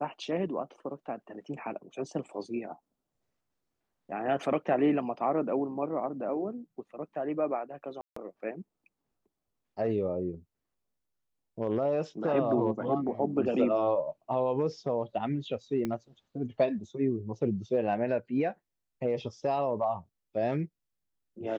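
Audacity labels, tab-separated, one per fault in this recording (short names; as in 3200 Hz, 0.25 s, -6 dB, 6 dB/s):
8.010000	8.160000	gap 0.154 s
15.850000	15.850000	pop -20 dBFS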